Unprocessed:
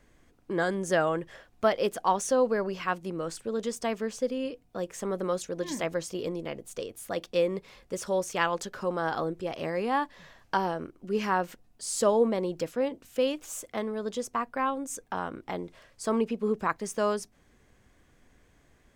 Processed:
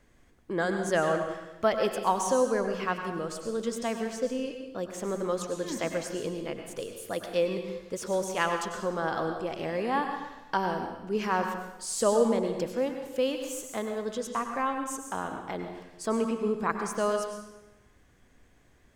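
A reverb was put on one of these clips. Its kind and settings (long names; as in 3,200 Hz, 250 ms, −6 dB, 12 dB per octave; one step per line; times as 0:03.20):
dense smooth reverb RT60 0.97 s, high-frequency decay 0.9×, pre-delay 85 ms, DRR 5 dB
level −1 dB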